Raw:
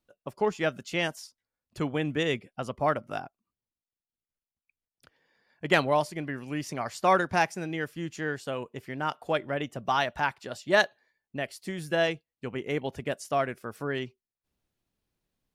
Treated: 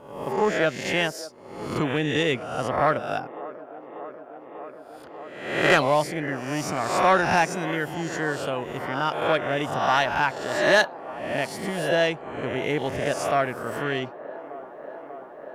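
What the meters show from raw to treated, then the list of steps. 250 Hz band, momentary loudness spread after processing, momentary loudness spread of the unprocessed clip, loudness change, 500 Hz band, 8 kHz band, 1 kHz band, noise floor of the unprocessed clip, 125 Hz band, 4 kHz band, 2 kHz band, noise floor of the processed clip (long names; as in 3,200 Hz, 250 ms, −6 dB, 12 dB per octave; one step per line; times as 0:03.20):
+4.5 dB, 20 LU, 14 LU, +5.5 dB, +5.5 dB, +7.5 dB, +5.5 dB, below −85 dBFS, +4.5 dB, +5.5 dB, +6.0 dB, −43 dBFS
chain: peak hold with a rise ahead of every peak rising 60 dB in 0.76 s
soft clipping −12.5 dBFS, distortion −19 dB
delay with a band-pass on its return 591 ms, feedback 85%, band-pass 590 Hz, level −15.5 dB
level +3.5 dB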